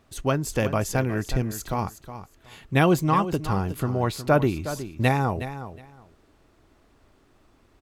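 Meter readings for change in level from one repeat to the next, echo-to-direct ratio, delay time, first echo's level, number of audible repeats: -15.0 dB, -12.0 dB, 0.365 s, -12.0 dB, 2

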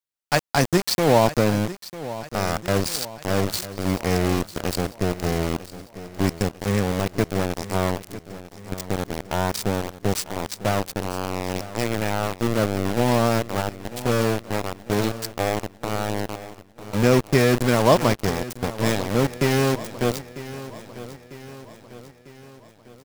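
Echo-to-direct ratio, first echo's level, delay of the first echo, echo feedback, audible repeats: -13.5 dB, -15.0 dB, 0.948 s, 53%, 4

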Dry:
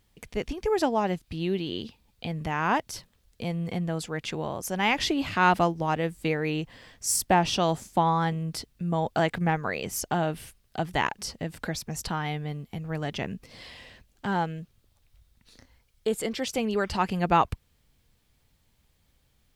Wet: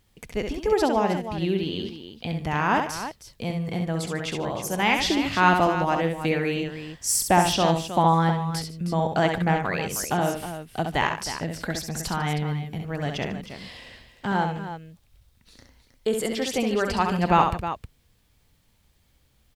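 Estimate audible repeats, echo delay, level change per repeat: 3, 67 ms, no steady repeat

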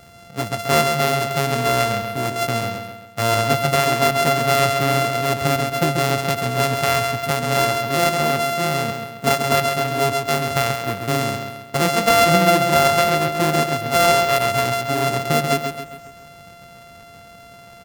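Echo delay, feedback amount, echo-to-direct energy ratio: 0.135 s, 46%, -5.5 dB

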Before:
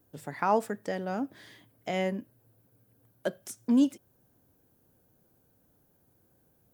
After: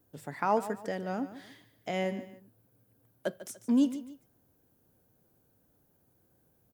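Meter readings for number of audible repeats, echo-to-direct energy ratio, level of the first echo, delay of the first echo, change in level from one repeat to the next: 2, -13.5 dB, -14.0 dB, 0.146 s, -9.0 dB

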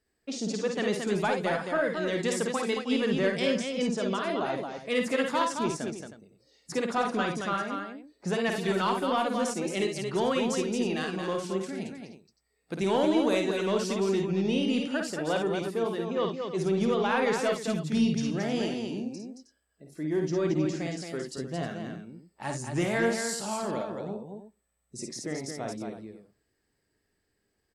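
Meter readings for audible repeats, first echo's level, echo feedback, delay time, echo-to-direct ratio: 3, -5.0 dB, no steady repeat, 52 ms, -1.5 dB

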